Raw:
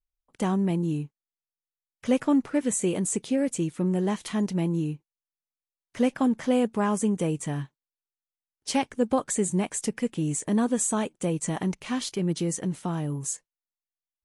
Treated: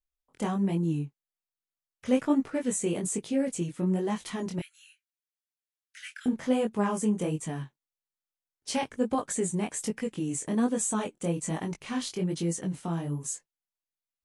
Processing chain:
0:04.59–0:06.26: Butterworth high-pass 1,400 Hz 96 dB per octave
chorus effect 1.2 Hz, delay 18 ms, depth 5.9 ms

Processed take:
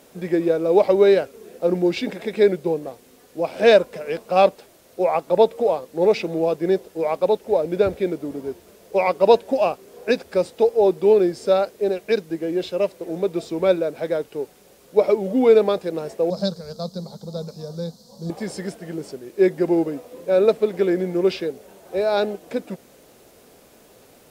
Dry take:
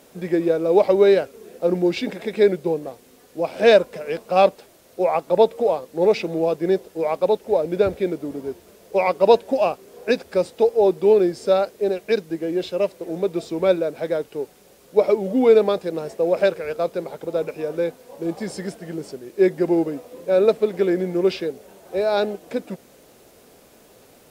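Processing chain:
0:16.30–0:18.30: drawn EQ curve 100 Hz 0 dB, 210 Hz +11 dB, 290 Hz −16 dB, 460 Hz −9 dB, 1,100 Hz −7 dB, 2,500 Hz −24 dB, 4,300 Hz +12 dB, 10,000 Hz −4 dB

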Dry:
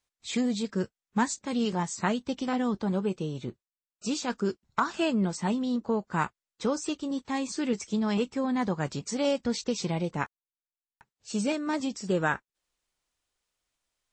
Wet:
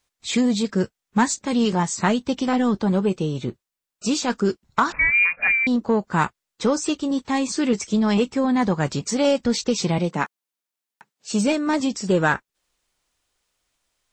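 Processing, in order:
0:09.98–0:11.31: Chebyshev high-pass filter 170 Hz, order 3
in parallel at −3.5 dB: soft clipping −24 dBFS, distortion −14 dB
0:04.92–0:05.67: on the sum: voice inversion scrambler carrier 2,600 Hz
level +4.5 dB

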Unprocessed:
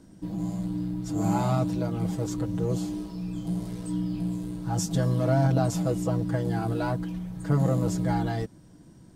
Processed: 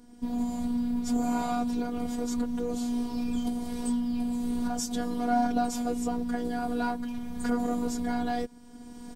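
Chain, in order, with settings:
camcorder AGC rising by 18 dB per second
comb filter 2.9 ms, depth 50%
phases set to zero 241 Hz

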